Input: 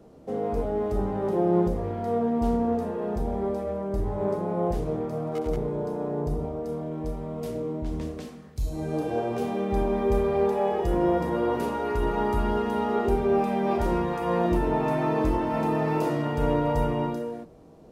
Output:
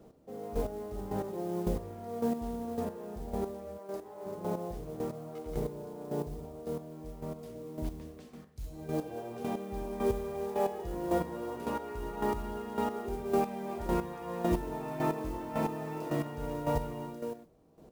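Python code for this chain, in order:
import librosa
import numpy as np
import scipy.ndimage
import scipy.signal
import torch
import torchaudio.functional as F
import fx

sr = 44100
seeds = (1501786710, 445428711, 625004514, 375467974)

y = fx.highpass(x, sr, hz=390.0, slope=12, at=(3.77, 4.25), fade=0.02)
y = fx.mod_noise(y, sr, seeds[0], snr_db=23)
y = fx.chopper(y, sr, hz=1.8, depth_pct=65, duty_pct=20)
y = y * 10.0 ** (-4.0 / 20.0)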